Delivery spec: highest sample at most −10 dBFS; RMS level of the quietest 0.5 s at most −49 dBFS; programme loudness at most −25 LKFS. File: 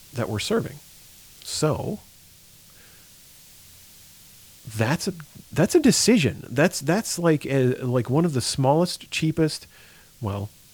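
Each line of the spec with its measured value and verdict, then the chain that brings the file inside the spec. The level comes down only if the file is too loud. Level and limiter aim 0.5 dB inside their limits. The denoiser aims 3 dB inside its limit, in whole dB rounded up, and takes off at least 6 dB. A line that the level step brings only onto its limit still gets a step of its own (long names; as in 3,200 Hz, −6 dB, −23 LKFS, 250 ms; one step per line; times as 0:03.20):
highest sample −5.5 dBFS: out of spec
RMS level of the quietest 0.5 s −51 dBFS: in spec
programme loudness −23.0 LKFS: out of spec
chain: level −2.5 dB
brickwall limiter −10.5 dBFS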